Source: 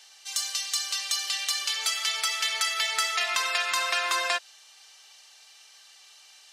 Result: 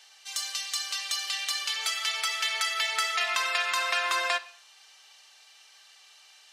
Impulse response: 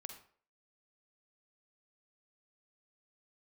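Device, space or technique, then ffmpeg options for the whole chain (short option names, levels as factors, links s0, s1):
filtered reverb send: -filter_complex "[0:a]asplit=2[s0][s1];[s1]highpass=f=580:p=1,lowpass=4300[s2];[1:a]atrim=start_sample=2205[s3];[s2][s3]afir=irnorm=-1:irlink=0,volume=1[s4];[s0][s4]amix=inputs=2:normalize=0,volume=0.668"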